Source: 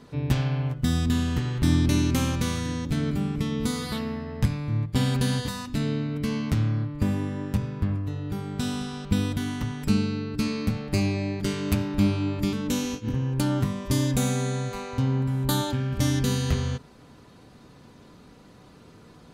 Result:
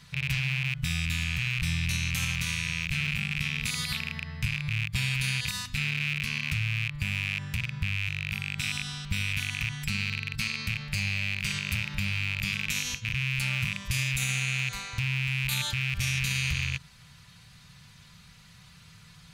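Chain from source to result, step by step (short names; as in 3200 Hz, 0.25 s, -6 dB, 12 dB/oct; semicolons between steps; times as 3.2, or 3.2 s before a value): rattling part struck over -29 dBFS, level -18 dBFS; EQ curve 170 Hz 0 dB, 290 Hz -27 dB, 2200 Hz +6 dB; limiter -17.5 dBFS, peak gain reduction 10.5 dB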